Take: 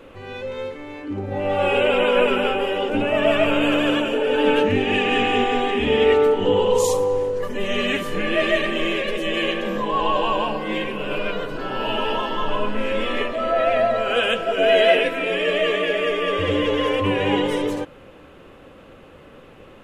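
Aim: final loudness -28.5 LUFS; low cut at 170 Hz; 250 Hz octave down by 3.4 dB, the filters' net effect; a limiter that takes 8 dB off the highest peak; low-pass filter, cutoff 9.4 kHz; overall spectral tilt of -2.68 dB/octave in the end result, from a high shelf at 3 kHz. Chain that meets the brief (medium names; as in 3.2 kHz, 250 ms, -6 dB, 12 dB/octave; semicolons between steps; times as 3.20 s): high-pass 170 Hz; low-pass 9.4 kHz; peaking EQ 250 Hz -3.5 dB; treble shelf 3 kHz +8 dB; trim -7.5 dB; peak limiter -18.5 dBFS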